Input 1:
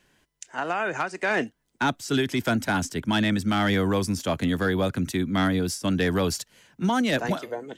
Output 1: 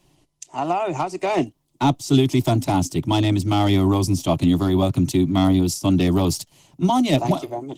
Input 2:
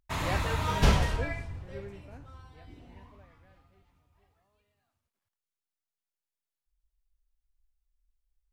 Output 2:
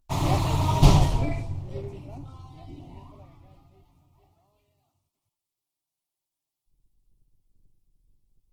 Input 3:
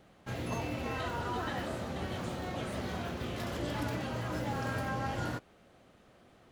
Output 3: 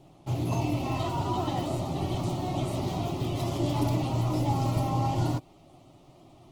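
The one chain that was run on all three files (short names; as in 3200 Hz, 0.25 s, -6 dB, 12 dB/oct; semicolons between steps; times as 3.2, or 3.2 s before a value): low shelf 390 Hz +6.5 dB; fixed phaser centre 320 Hz, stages 8; gain +6.5 dB; Opus 16 kbps 48000 Hz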